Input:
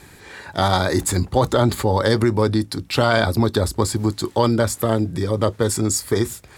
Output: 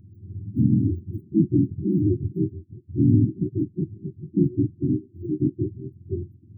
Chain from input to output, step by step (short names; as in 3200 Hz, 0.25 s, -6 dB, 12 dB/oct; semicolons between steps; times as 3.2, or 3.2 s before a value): spectrum mirrored in octaves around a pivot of 410 Hz; brick-wall FIR band-stop 380–14000 Hz